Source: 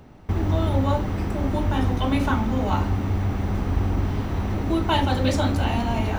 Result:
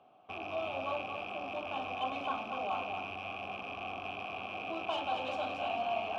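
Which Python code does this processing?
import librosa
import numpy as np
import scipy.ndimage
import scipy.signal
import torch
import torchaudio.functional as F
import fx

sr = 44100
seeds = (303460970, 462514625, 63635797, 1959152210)

p1 = fx.rattle_buzz(x, sr, strikes_db=-30.0, level_db=-20.0)
p2 = scipy.signal.sosfilt(scipy.signal.butter(2, 86.0, 'highpass', fs=sr, output='sos'), p1)
p3 = fx.peak_eq(p2, sr, hz=3200.0, db=11.0, octaves=0.29)
p4 = np.clip(10.0 ** (18.5 / 20.0) * p3, -1.0, 1.0) / 10.0 ** (18.5 / 20.0)
p5 = fx.vowel_filter(p4, sr, vowel='a')
y = p5 + fx.echo_single(p5, sr, ms=234, db=-7.5, dry=0)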